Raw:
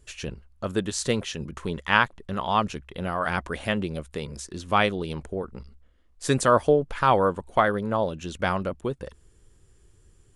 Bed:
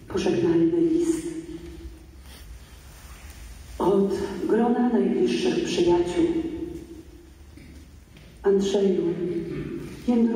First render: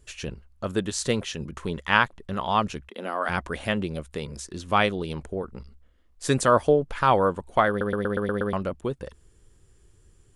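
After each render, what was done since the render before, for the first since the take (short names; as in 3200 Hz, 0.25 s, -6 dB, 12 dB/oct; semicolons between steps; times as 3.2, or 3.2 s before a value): 2.89–3.29 elliptic high-pass 210 Hz; 7.69 stutter in place 0.12 s, 7 plays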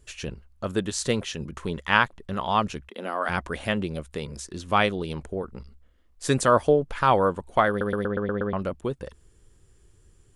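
8.05–8.59 air absorption 290 m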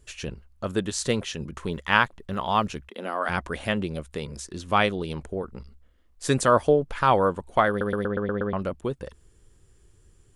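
1.72–3 short-mantissa float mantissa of 6-bit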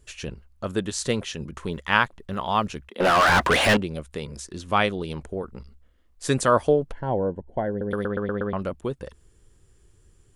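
3–3.77 overdrive pedal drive 33 dB, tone 4000 Hz, clips at -10 dBFS; 6.92–7.91 running mean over 36 samples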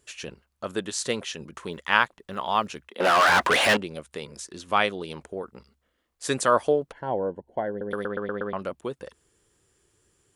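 HPF 390 Hz 6 dB/oct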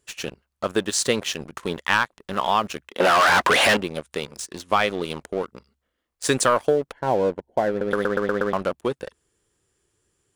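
sample leveller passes 2; compressor, threshold -15 dBFS, peak gain reduction 6.5 dB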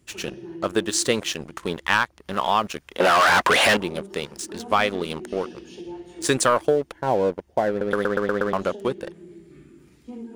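add bed -16.5 dB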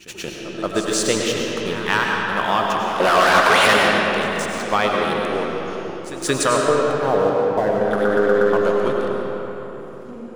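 pre-echo 0.178 s -15 dB; digital reverb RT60 3.9 s, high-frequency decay 0.6×, pre-delay 60 ms, DRR -1.5 dB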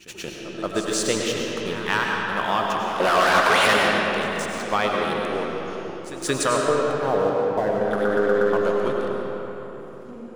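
gain -3.5 dB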